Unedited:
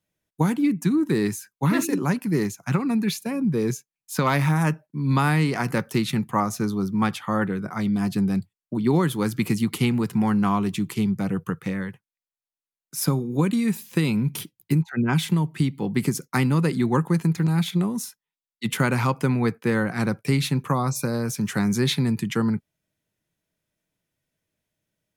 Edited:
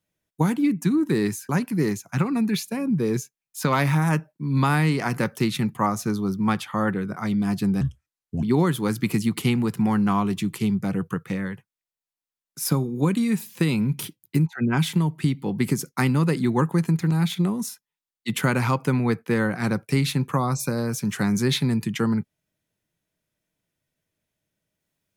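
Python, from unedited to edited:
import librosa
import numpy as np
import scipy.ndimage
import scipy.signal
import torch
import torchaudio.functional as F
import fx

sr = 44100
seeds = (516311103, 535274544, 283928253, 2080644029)

y = fx.edit(x, sr, fx.cut(start_s=1.49, length_s=0.54),
    fx.speed_span(start_s=8.35, length_s=0.44, speed=0.71), tone=tone)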